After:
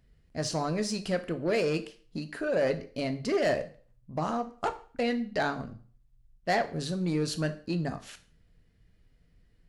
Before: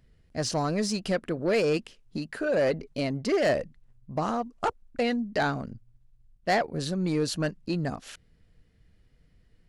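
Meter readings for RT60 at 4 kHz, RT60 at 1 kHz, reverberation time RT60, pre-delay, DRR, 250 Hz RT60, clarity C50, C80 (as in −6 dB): 0.40 s, 0.45 s, 0.45 s, 4 ms, 8.5 dB, 0.45 s, 15.0 dB, 19.0 dB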